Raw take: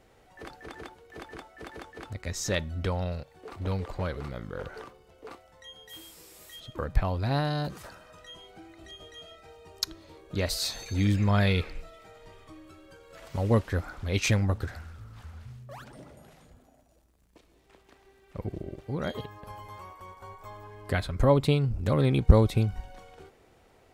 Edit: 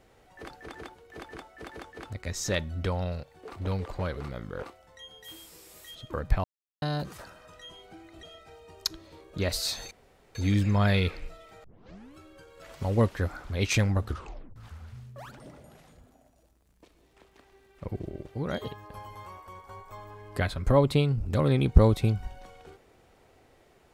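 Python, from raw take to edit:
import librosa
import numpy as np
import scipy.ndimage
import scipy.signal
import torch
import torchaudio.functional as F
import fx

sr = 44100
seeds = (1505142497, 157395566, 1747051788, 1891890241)

y = fx.edit(x, sr, fx.cut(start_s=4.63, length_s=0.65),
    fx.silence(start_s=7.09, length_s=0.38),
    fx.cut(start_s=8.88, length_s=0.32),
    fx.insert_room_tone(at_s=10.88, length_s=0.44),
    fx.tape_start(start_s=12.17, length_s=0.52),
    fx.tape_stop(start_s=14.59, length_s=0.5), tone=tone)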